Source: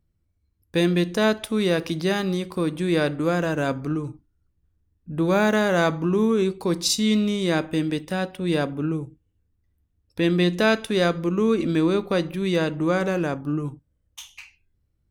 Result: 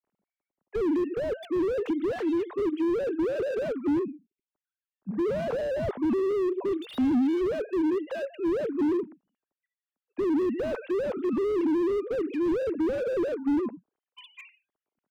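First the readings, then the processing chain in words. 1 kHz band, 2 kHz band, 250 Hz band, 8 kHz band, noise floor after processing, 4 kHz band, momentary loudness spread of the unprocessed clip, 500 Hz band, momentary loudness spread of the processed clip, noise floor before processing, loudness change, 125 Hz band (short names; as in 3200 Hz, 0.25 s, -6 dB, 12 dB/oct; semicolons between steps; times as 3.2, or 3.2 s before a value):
-10.0 dB, -14.5 dB, -4.0 dB, under -20 dB, under -85 dBFS, -18.5 dB, 9 LU, -3.0 dB, 6 LU, -71 dBFS, -5.0 dB, -18.5 dB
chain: sine-wave speech; dynamic EQ 430 Hz, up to +7 dB, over -33 dBFS, Q 1.9; compressor 8:1, threshold -16 dBFS, peak gain reduction 9.5 dB; spectral delete 4.05–4.52, 430–2000 Hz; slew limiter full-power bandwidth 23 Hz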